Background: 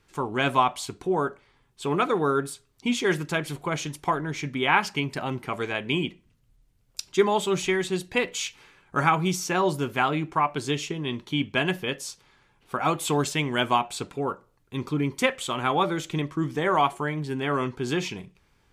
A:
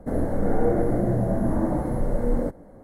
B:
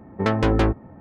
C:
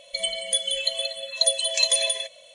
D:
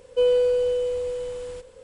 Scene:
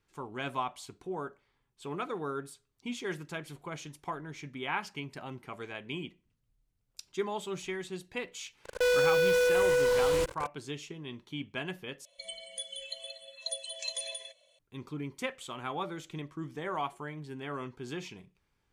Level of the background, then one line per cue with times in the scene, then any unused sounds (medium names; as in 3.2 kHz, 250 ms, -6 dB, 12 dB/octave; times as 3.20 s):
background -12.5 dB
8.64 s: add D -11 dB + fuzz box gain 40 dB, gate -44 dBFS
12.05 s: replace with C -16 dB
not used: A, B